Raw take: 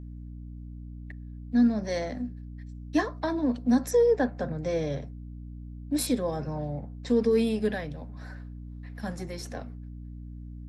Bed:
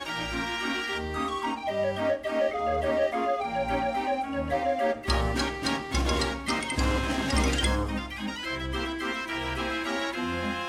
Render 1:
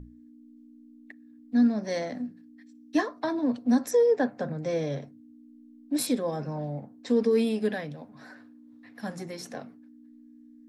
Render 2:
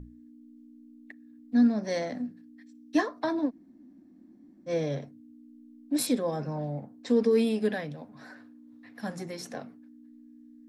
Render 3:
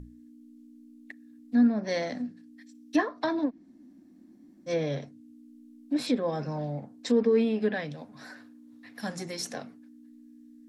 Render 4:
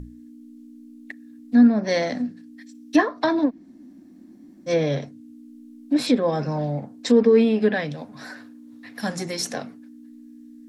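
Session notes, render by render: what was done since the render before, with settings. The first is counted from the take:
mains-hum notches 60/120/180 Hz
0:03.48–0:04.69: fill with room tone, crossfade 0.06 s
treble cut that deepens with the level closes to 2,000 Hz, closed at −22.5 dBFS; high-shelf EQ 2,600 Hz +9.5 dB
level +7.5 dB

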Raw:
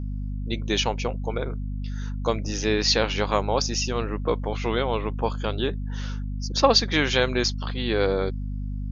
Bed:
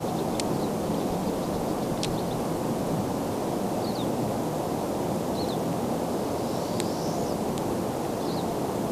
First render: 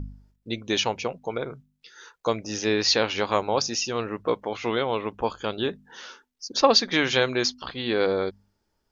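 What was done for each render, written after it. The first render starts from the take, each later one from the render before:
hum removal 50 Hz, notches 5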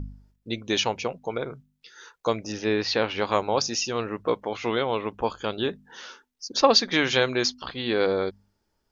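0:02.52–0:03.22: high-frequency loss of the air 180 metres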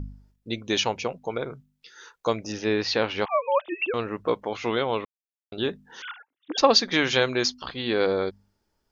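0:03.25–0:03.94: three sine waves on the formant tracks
0:05.05–0:05.52: silence
0:06.02–0:06.58: three sine waves on the formant tracks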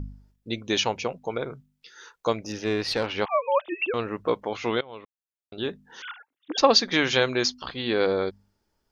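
0:02.32–0:03.07: tube saturation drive 17 dB, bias 0.35
0:04.81–0:06.52: fade in equal-power, from −22 dB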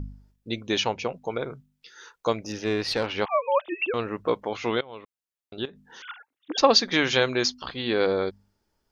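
0:00.67–0:01.14: high-frequency loss of the air 53 metres
0:05.65–0:06.09: downward compressor 8 to 1, threshold −40 dBFS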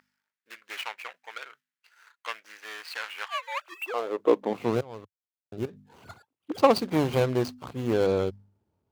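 running median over 25 samples
high-pass filter sweep 1,700 Hz → 98 Hz, 0:03.58–0:04.83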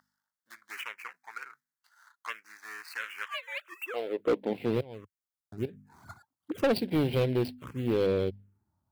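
phaser swept by the level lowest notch 420 Hz, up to 1,200 Hz, full sweep at −26.5 dBFS
hard clipping −20.5 dBFS, distortion −11 dB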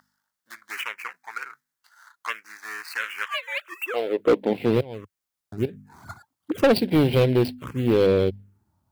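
level +8 dB

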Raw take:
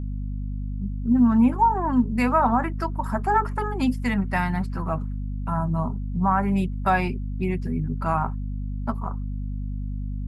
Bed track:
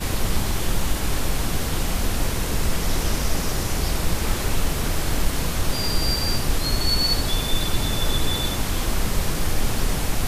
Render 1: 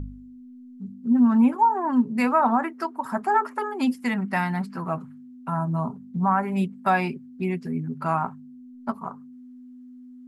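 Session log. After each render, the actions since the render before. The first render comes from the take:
hum removal 50 Hz, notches 4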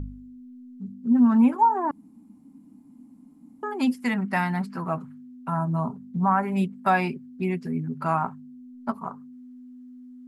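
0:01.91–0:03.63: fill with room tone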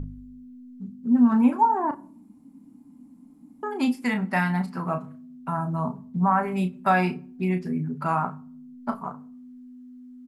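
double-tracking delay 33 ms −8.5 dB
rectangular room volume 640 cubic metres, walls furnished, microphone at 0.34 metres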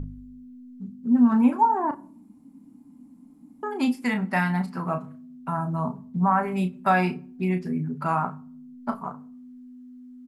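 no processing that can be heard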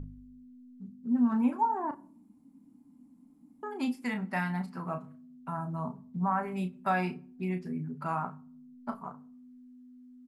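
level −8 dB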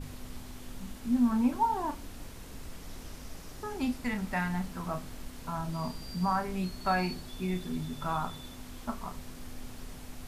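mix in bed track −22 dB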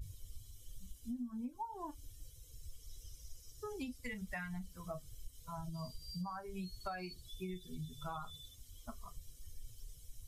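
spectral dynamics exaggerated over time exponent 2
downward compressor 20 to 1, threshold −39 dBFS, peak gain reduction 18 dB

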